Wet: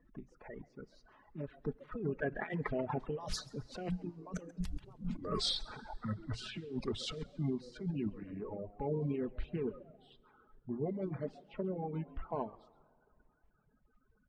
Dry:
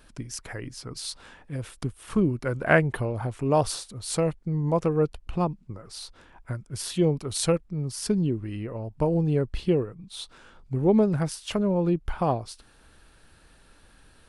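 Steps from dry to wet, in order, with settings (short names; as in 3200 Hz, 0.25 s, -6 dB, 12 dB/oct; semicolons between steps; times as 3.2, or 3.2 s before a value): bin magnitudes rounded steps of 30 dB; Doppler pass-by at 5.05, 33 m/s, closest 5.2 m; LPF 7600 Hz; notches 60/120/180 Hz; low-pass opened by the level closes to 1200 Hz, open at -38.5 dBFS; comb 4.7 ms, depth 43%; negative-ratio compressor -52 dBFS, ratio -1; on a send: frequency-shifting echo 0.135 s, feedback 36%, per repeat +110 Hz, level -14.5 dB; on the sum: plate-style reverb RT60 2.4 s, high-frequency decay 0.8×, DRR 12 dB; reverb removal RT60 1.4 s; gain +13 dB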